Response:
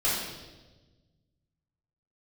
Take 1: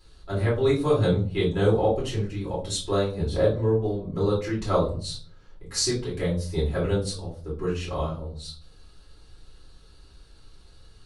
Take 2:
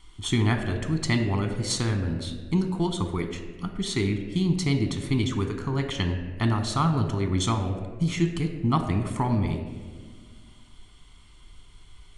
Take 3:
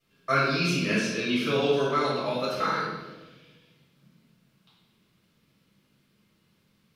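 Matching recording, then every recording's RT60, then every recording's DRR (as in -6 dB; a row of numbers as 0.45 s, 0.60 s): 3; 0.45 s, 1.7 s, 1.2 s; -7.5 dB, 5.0 dB, -10.0 dB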